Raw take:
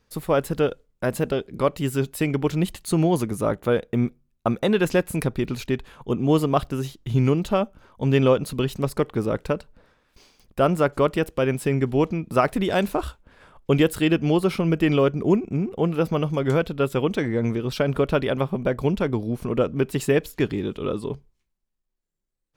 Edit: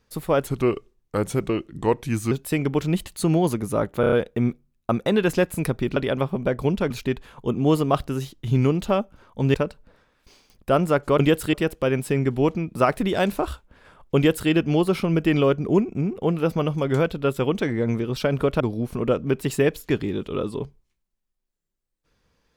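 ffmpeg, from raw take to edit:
-filter_complex "[0:a]asplit=13[a][b][c][d][e][f][g][h][i][j][k][l][m];[a]atrim=end=0.474[n];[b]atrim=start=0.47:end=2,asetpts=PTS-STARTPTS,asetrate=36603,aresample=44100[o];[c]atrim=start=1.996:end=3.722[p];[d]atrim=start=3.688:end=3.722[q];[e]atrim=start=3.688:end=3.722[r];[f]atrim=start=3.688:end=3.722[s];[g]atrim=start=3.688:end=5.532[t];[h]atrim=start=18.158:end=19.102[u];[i]atrim=start=5.528:end=8.172[v];[j]atrim=start=9.438:end=11.092[w];[k]atrim=start=13.718:end=14.062[x];[l]atrim=start=11.088:end=18.162[y];[m]atrim=start=19.098[z];[n][o]acrossfade=d=0.004:c1=hsin:c2=hsin[aa];[aa][p]acrossfade=d=0.004:c1=hsin:c2=hsin[ab];[ab][q]acrossfade=d=0.004:c1=hsin:c2=hsin[ac];[ac][r]acrossfade=d=0.004:c1=hsin:c2=hsin[ad];[ad][s]acrossfade=d=0.004:c1=hsin:c2=hsin[ae];[ae][t]acrossfade=d=0.004:c1=hsin:c2=hsin[af];[af][u]acrossfade=d=0.004:c1=hsin:c2=hsin[ag];[ag][v]acrossfade=d=0.004:c1=hsin:c2=hsin[ah];[ah][w]acrossfade=d=0.004:c1=hsin:c2=hsin[ai];[ai][x]acrossfade=d=0.004:c1=hsin:c2=hsin[aj];[aj][y]acrossfade=d=0.004:c1=hsin:c2=hsin[ak];[ak][z]acrossfade=d=0.004:c1=hsin:c2=hsin"

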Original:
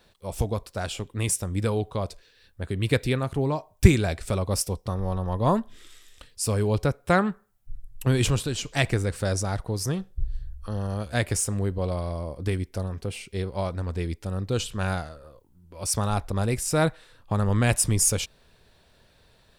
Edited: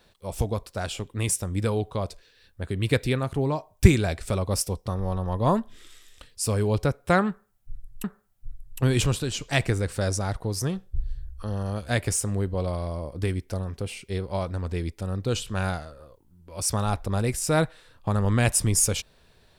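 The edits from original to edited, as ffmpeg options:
-filter_complex "[0:a]asplit=2[a][b];[a]atrim=end=8.042[c];[b]atrim=start=7.278[d];[c][d]acrossfade=d=0.004:c1=hsin:c2=hsin"

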